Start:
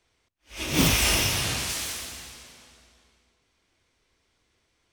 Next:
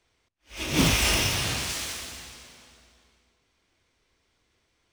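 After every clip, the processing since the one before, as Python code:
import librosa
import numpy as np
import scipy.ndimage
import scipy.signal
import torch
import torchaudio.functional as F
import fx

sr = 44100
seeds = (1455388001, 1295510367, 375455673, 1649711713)

y = scipy.signal.medfilt(x, 3)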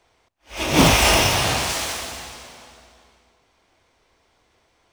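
y = fx.peak_eq(x, sr, hz=760.0, db=9.5, octaves=1.4)
y = y * librosa.db_to_amplitude(5.5)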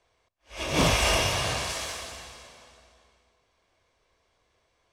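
y = scipy.signal.sosfilt(scipy.signal.butter(2, 11000.0, 'lowpass', fs=sr, output='sos'), x)
y = y + 0.32 * np.pad(y, (int(1.8 * sr / 1000.0), 0))[:len(y)]
y = y * librosa.db_to_amplitude(-8.0)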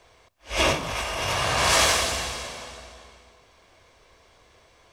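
y = fx.dynamic_eq(x, sr, hz=1200.0, q=0.75, threshold_db=-38.0, ratio=4.0, max_db=6)
y = fx.over_compress(y, sr, threshold_db=-32.0, ratio=-1.0)
y = y * librosa.db_to_amplitude(7.5)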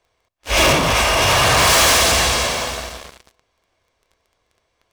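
y = fx.leveller(x, sr, passes=5)
y = y * librosa.db_to_amplitude(-2.0)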